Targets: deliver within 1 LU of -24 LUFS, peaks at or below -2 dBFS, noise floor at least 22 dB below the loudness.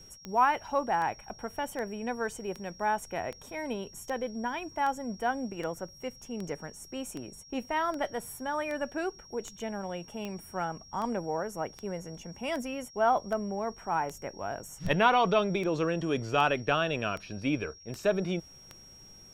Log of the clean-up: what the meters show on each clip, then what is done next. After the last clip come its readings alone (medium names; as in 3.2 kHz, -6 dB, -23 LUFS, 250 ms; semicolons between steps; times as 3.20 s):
clicks found 25; steady tone 5.6 kHz; tone level -51 dBFS; loudness -32.0 LUFS; peak level -10.5 dBFS; loudness target -24.0 LUFS
-> de-click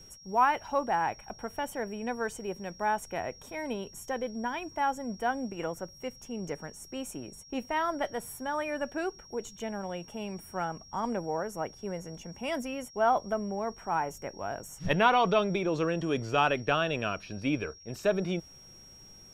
clicks found 0; steady tone 5.6 kHz; tone level -51 dBFS
-> band-stop 5.6 kHz, Q 30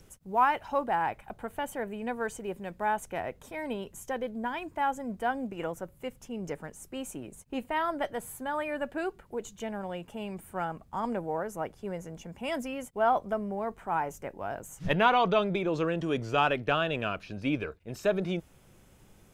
steady tone not found; loudness -32.0 LUFS; peak level -10.5 dBFS; loudness target -24.0 LUFS
-> trim +8 dB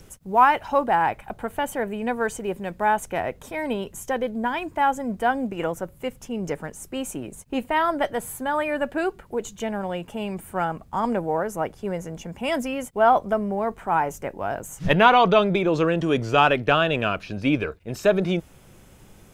loudness -24.0 LUFS; peak level -2.5 dBFS; noise floor -51 dBFS